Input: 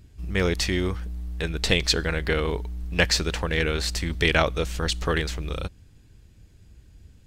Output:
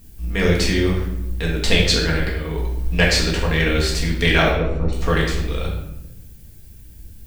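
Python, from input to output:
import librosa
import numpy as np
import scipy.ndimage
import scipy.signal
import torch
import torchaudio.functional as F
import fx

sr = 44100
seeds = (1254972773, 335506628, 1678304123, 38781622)

y = fx.over_compress(x, sr, threshold_db=-29.0, ratio=-0.5, at=(2.29, 2.97))
y = fx.dmg_noise_colour(y, sr, seeds[0], colour='violet', level_db=-55.0)
y = fx.moving_average(y, sr, points=27, at=(4.51, 4.93))
y = fx.room_shoebox(y, sr, seeds[1], volume_m3=270.0, walls='mixed', distance_m=1.7)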